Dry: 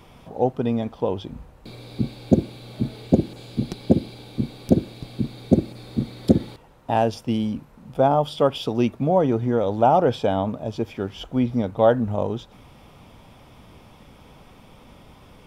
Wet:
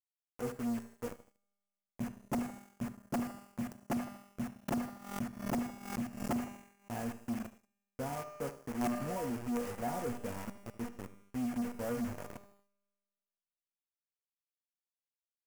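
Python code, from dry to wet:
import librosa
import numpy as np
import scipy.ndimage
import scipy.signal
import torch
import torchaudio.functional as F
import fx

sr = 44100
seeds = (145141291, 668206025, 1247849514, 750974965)

y = fx.wiener(x, sr, points=41)
y = fx.dereverb_blind(y, sr, rt60_s=0.93)
y = fx.comb_fb(y, sr, f0_hz=240.0, decay_s=0.39, harmonics='all', damping=0.0, mix_pct=90)
y = np.sign(y) * np.maximum(np.abs(y) - 10.0 ** (-47.0 / 20.0), 0.0)
y = fx.peak_eq(y, sr, hz=870.0, db=-10.5, octaves=3.0)
y = fx.quant_dither(y, sr, seeds[0], bits=8, dither='none')
y = (np.mod(10.0 ** (26.5 / 20.0) * y + 1.0, 2.0) - 1.0) / 10.0 ** (26.5 / 20.0)
y = fx.comb_fb(y, sr, f0_hz=200.0, decay_s=1.7, harmonics='all', damping=0.0, mix_pct=70)
y = fx.echo_filtered(y, sr, ms=78, feedback_pct=43, hz=2000.0, wet_db=-15.5)
y = fx.leveller(y, sr, passes=3)
y = fx.peak_eq(y, sr, hz=3800.0, db=-13.0, octaves=0.72)
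y = fx.pre_swell(y, sr, db_per_s=92.0, at=(4.68, 6.9))
y = y * librosa.db_to_amplitude(5.5)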